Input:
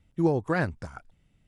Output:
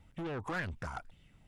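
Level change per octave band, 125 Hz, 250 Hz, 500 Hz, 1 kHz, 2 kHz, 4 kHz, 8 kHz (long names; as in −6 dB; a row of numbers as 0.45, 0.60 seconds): −11.5 dB, −14.5 dB, −14.0 dB, −7.5 dB, −6.0 dB, −1.0 dB, can't be measured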